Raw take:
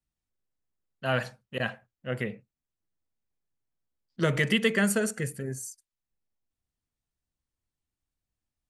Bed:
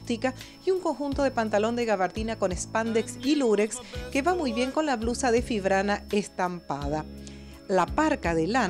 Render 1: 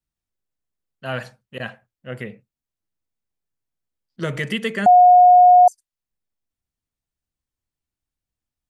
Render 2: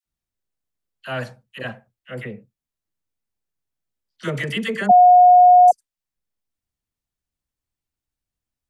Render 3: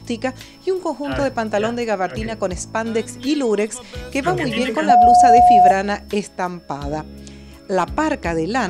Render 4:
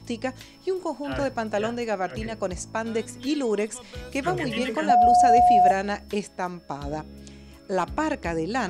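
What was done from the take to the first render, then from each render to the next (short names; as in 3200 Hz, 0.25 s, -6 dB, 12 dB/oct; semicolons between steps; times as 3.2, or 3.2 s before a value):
4.86–5.68 bleep 721 Hz -6.5 dBFS
dispersion lows, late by 53 ms, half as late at 890 Hz
add bed +4.5 dB
gain -6.5 dB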